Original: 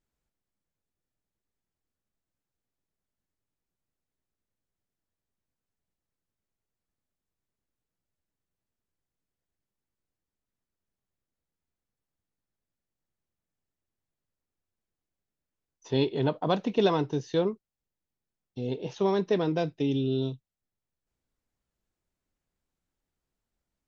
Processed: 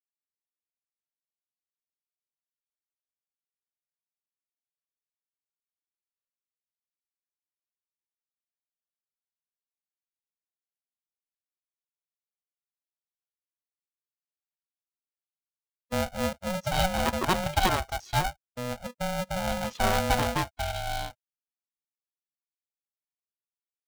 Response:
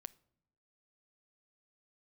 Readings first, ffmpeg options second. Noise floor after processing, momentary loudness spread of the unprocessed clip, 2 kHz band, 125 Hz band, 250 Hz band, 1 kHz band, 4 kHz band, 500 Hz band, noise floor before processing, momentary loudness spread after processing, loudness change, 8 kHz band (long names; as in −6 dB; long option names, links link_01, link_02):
below −85 dBFS, 10 LU, +11.0 dB, +0.5 dB, −4.0 dB, +7.5 dB, +6.0 dB, −3.5 dB, below −85 dBFS, 10 LU, −0.5 dB, can't be measured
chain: -filter_complex "[0:a]acrossover=split=310[link_01][link_02];[link_02]adelay=790[link_03];[link_01][link_03]amix=inputs=2:normalize=0,afftfilt=real='re*gte(hypot(re,im),0.00501)':imag='im*gte(hypot(re,im),0.00501)':win_size=1024:overlap=0.75,aeval=exprs='val(0)*sgn(sin(2*PI*370*n/s))':channel_layout=same,volume=2dB"